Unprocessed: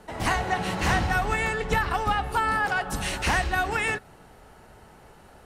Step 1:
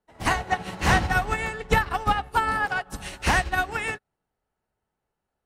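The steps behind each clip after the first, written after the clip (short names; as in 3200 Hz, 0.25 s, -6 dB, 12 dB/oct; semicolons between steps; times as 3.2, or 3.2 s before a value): upward expander 2.5:1, over -45 dBFS; gain +5 dB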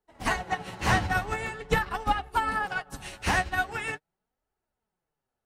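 flange 0.44 Hz, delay 2.3 ms, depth 8.6 ms, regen +36%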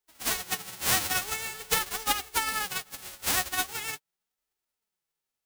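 spectral whitening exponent 0.1; gain -2 dB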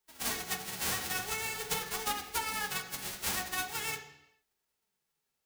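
compressor 6:1, threshold -35 dBFS, peak gain reduction 14 dB; on a send at -3 dB: reverb RT60 0.85 s, pre-delay 3 ms; on the sum: gain +2.5 dB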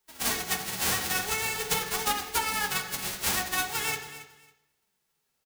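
feedback echo 0.275 s, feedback 20%, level -14.5 dB; gain +6 dB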